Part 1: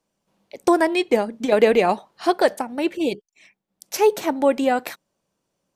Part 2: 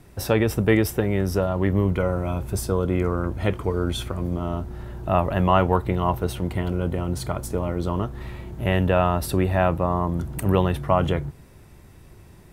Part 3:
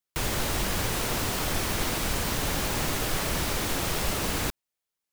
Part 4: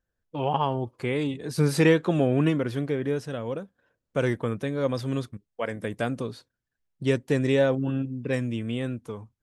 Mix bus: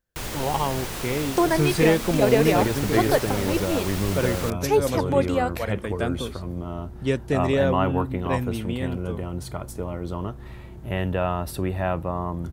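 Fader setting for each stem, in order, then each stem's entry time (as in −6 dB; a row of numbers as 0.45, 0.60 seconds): −4.0, −5.0, −3.5, 0.0 decibels; 0.70, 2.25, 0.00, 0.00 seconds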